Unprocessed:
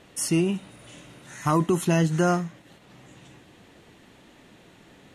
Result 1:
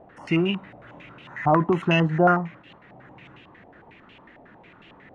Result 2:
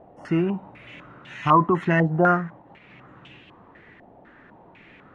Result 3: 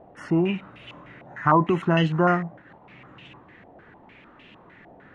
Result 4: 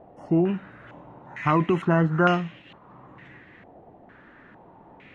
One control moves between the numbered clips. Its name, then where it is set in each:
stepped low-pass, rate: 11, 4, 6.6, 2.2 Hz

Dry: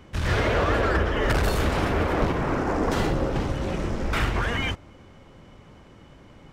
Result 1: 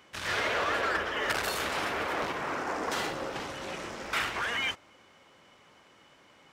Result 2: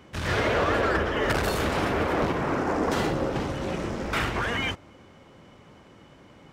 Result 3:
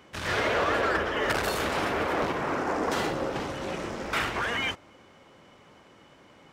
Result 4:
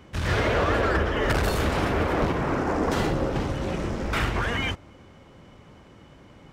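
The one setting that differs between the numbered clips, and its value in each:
HPF, cutoff: 1300, 150, 470, 48 Hz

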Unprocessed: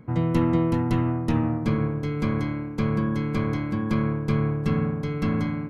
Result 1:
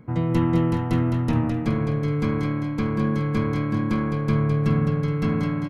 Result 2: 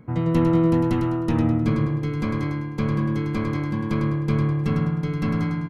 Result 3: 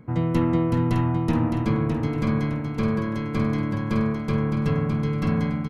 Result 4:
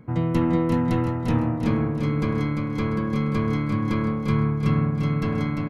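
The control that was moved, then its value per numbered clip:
feedback echo, time: 0.211, 0.103, 0.612, 0.347 s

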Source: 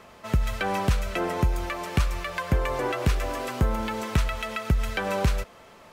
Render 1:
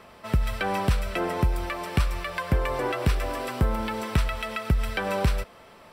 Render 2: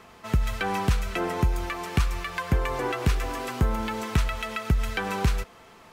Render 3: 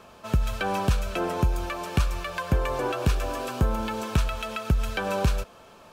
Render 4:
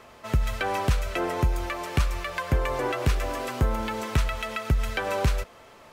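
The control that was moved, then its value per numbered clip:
notch, frequency: 6600, 580, 2000, 190 Hz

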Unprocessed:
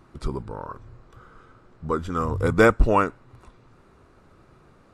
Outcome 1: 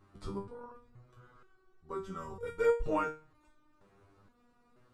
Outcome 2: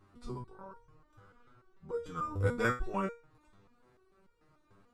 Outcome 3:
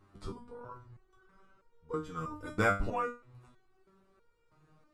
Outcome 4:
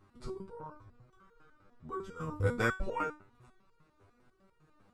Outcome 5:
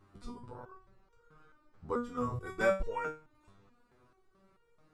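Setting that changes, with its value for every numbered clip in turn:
stepped resonator, rate: 2.1, 6.8, 3.1, 10, 4.6 Hz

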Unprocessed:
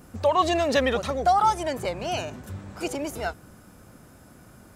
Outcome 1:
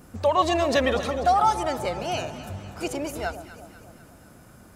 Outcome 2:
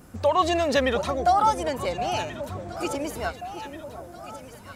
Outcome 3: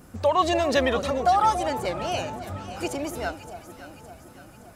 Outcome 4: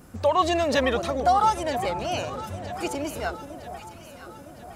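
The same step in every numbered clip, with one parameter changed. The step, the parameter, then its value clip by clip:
echo with dull and thin repeats by turns, time: 0.123, 0.717, 0.283, 0.48 s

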